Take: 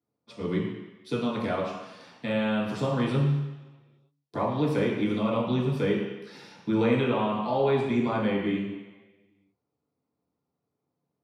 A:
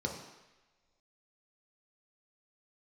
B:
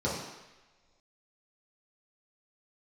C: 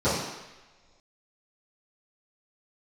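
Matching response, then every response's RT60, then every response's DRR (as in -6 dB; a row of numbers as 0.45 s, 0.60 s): B; no single decay rate, no single decay rate, no single decay rate; 0.0 dB, -7.5 dB, -16.5 dB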